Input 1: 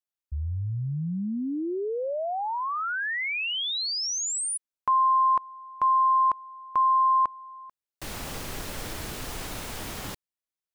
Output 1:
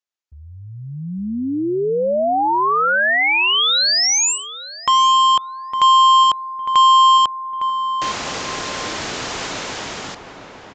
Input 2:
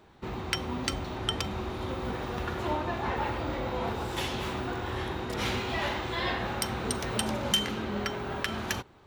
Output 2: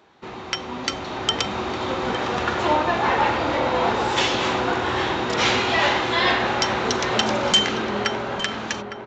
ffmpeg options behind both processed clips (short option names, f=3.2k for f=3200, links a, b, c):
-filter_complex "[0:a]highpass=f=390:p=1,dynaudnorm=f=120:g=17:m=8.5dB,aresample=16000,aeval=exprs='0.211*(abs(mod(val(0)/0.211+3,4)-2)-1)':c=same,aresample=44100,asplit=2[a][b];[b]adelay=858,lowpass=f=1.4k:p=1,volume=-7.5dB,asplit=2[c][d];[d]adelay=858,lowpass=f=1.4k:p=1,volume=0.28,asplit=2[e][f];[f]adelay=858,lowpass=f=1.4k:p=1,volume=0.28[g];[a][c][e][g]amix=inputs=4:normalize=0,volume=4.5dB"